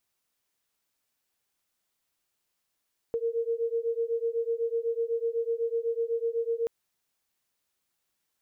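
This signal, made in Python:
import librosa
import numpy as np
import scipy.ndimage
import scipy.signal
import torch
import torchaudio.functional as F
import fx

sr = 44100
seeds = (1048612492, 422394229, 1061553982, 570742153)

y = fx.two_tone_beats(sr, length_s=3.53, hz=458.0, beat_hz=8.0, level_db=-29.5)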